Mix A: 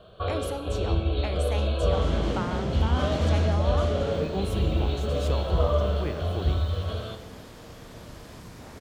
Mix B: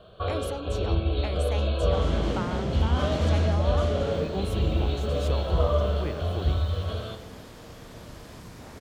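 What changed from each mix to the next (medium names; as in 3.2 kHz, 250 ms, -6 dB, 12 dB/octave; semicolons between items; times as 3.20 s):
speech: send off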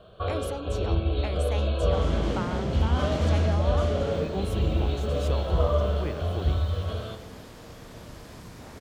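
first sound: add distance through air 89 m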